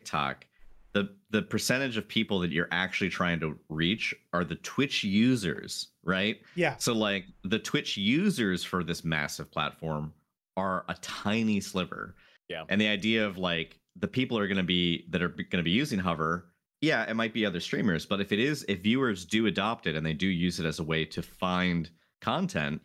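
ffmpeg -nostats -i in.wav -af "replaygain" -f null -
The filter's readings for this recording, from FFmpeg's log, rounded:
track_gain = +8.7 dB
track_peak = 0.189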